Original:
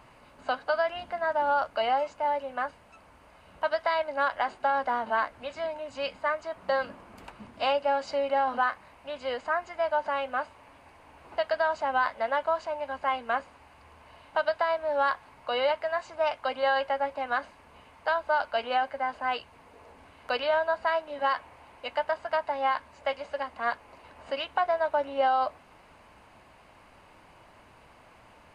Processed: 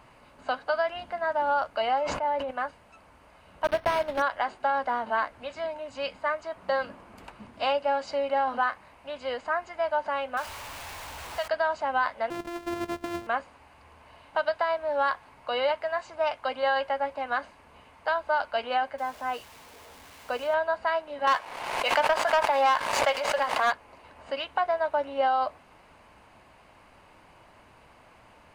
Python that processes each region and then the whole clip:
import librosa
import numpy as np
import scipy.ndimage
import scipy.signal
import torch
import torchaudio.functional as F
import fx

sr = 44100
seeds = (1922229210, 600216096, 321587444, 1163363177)

y = fx.chain(x, sr, fx.high_shelf(hz=4500.0, db=-9.0),
    fx.sustainer(db_per_s=40.0), at=(1.99, 2.51))
y = fx.chain(y, sr, fx.block_float(bits=3),
    fx.low_shelf(hz=350.0, db=8.5),
    fx.resample_linear(factor=6), at=(3.64, 4.22))
y = fx.chain(y, sr, fx.zero_step(step_db=-33.5),
    fx.peak_eq(hz=280.0, db=-10.5, octaves=2.2), at=(10.37, 11.48))
y = fx.chain(y, sr, fx.sample_sort(block=128),
    fx.high_shelf(hz=2900.0, db=-10.5),
    fx.over_compress(threshold_db=-32.0, ratio=-1.0), at=(12.3, 13.27))
y = fx.chain(y, sr, fx.crossing_spikes(level_db=-27.5),
    fx.lowpass(hz=1300.0, slope=6), at=(18.98, 20.54))
y = fx.chain(y, sr, fx.highpass(hz=500.0, slope=12),
    fx.leveller(passes=2),
    fx.pre_swell(db_per_s=42.0), at=(21.27, 23.72))